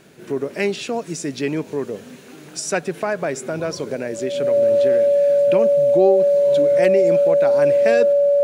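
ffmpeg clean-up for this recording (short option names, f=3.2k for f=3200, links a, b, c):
-af "bandreject=f=570:w=30"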